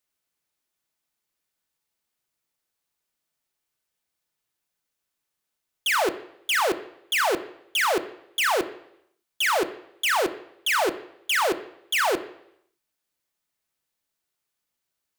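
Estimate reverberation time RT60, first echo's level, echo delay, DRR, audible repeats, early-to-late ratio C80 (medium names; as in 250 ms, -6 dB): 0.75 s, no echo, no echo, 8.0 dB, no echo, 17.0 dB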